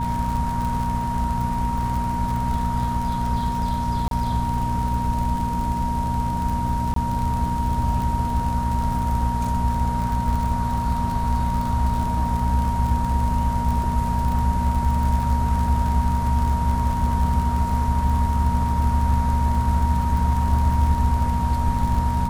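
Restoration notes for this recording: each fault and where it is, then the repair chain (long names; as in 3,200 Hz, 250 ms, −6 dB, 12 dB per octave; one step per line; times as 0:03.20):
surface crackle 60 per second −26 dBFS
mains hum 60 Hz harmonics 4 −27 dBFS
whistle 940 Hz −25 dBFS
0:04.08–0:04.11: drop-out 32 ms
0:06.94–0:06.96: drop-out 23 ms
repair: click removal
hum removal 60 Hz, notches 4
notch filter 940 Hz, Q 30
repair the gap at 0:04.08, 32 ms
repair the gap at 0:06.94, 23 ms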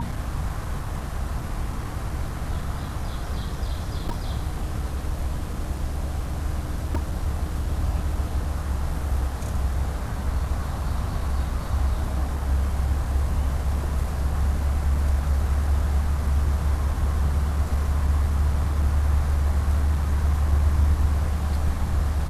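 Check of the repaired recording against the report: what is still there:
none of them is left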